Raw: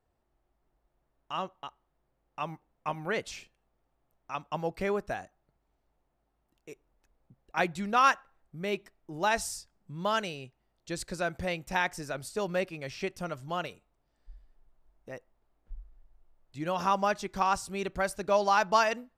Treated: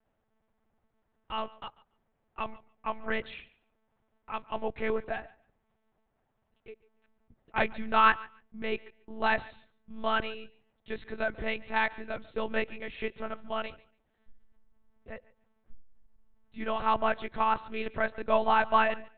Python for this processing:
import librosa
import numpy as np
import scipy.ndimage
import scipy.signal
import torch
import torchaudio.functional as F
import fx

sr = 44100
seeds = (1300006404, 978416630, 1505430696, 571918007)

p1 = fx.lpc_monotone(x, sr, seeds[0], pitch_hz=220.0, order=8)
p2 = fx.peak_eq(p1, sr, hz=1800.0, db=3.0, octaves=0.85)
y = p2 + fx.echo_feedback(p2, sr, ms=143, feedback_pct=16, wet_db=-21.5, dry=0)